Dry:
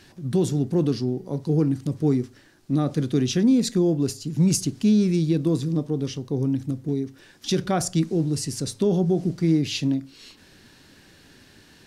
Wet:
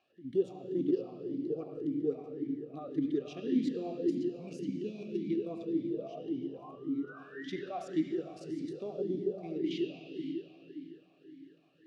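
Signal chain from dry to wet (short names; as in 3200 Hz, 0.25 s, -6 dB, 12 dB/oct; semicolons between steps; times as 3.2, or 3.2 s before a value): notch 1500 Hz, Q 5.6; painted sound rise, 5.77–7.62, 530–2200 Hz -40 dBFS; level quantiser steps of 10 dB; reverb RT60 3.5 s, pre-delay 64 ms, DRR 0.5 dB; vowel sweep a-i 1.8 Hz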